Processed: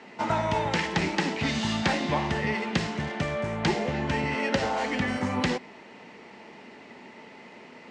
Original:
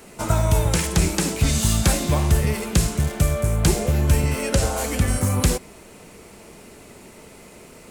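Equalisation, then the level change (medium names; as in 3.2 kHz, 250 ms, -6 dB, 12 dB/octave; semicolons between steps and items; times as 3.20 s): cabinet simulation 180–5000 Hz, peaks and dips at 240 Hz +6 dB, 870 Hz +9 dB, 1.9 kHz +10 dB, 2.9 kHz +4 dB; -4.5 dB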